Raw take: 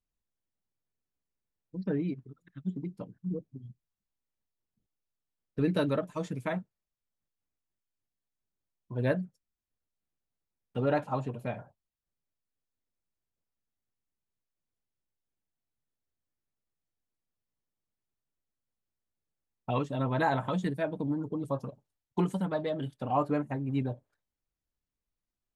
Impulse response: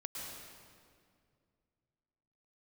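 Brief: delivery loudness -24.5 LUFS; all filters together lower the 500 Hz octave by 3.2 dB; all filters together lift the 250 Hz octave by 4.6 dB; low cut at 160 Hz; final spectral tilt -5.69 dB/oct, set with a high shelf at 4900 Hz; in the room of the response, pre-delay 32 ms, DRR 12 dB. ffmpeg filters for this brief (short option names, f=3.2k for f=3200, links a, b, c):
-filter_complex "[0:a]highpass=160,equalizer=f=250:t=o:g=9,equalizer=f=500:t=o:g=-6.5,highshelf=f=4.9k:g=5,asplit=2[a][b];[1:a]atrim=start_sample=2205,adelay=32[c];[b][c]afir=irnorm=-1:irlink=0,volume=-11.5dB[d];[a][d]amix=inputs=2:normalize=0,volume=7dB"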